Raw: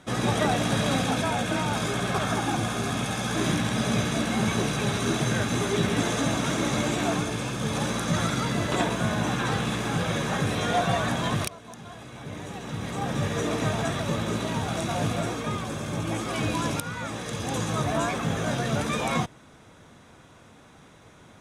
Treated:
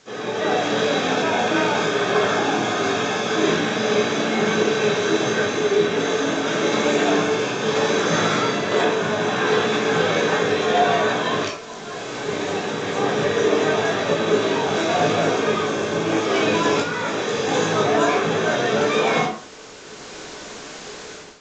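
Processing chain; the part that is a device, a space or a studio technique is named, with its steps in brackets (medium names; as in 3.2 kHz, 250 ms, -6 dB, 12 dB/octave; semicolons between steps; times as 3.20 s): filmed off a television (band-pass 270–6900 Hz; peaking EQ 440 Hz +9.5 dB 0.37 oct; reverberation RT60 0.40 s, pre-delay 14 ms, DRR -1.5 dB; white noise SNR 21 dB; level rider gain up to 16.5 dB; trim -6 dB; AAC 32 kbps 16 kHz)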